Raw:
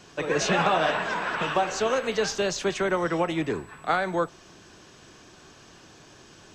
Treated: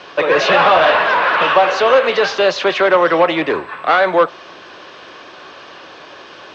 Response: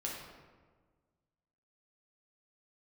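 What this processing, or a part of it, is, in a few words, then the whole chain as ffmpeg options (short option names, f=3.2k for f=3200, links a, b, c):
overdrive pedal into a guitar cabinet: -filter_complex "[0:a]asplit=2[a][b];[b]highpass=f=720:p=1,volume=17dB,asoftclip=type=tanh:threshold=-10.5dB[c];[a][c]amix=inputs=2:normalize=0,lowpass=f=5.9k:p=1,volume=-6dB,highpass=77,equalizer=f=130:t=q:w=4:g=-7,equalizer=f=210:t=q:w=4:g=-5,equalizer=f=550:t=q:w=4:g=7,equalizer=f=1.1k:t=q:w=4:g=4,lowpass=f=4.3k:w=0.5412,lowpass=f=4.3k:w=1.3066,volume=5dB"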